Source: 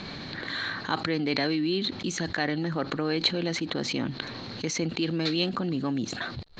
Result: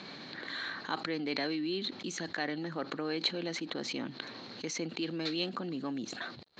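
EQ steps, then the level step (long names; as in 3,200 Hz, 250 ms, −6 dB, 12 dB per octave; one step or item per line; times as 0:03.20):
high-pass filter 210 Hz 12 dB per octave
−6.5 dB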